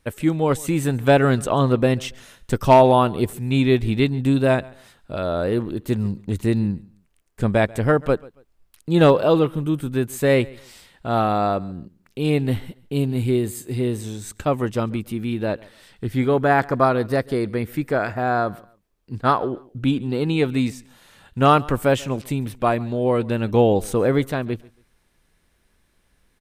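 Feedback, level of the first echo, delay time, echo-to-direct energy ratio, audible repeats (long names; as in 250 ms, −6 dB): 27%, −23.0 dB, 139 ms, −22.5 dB, 2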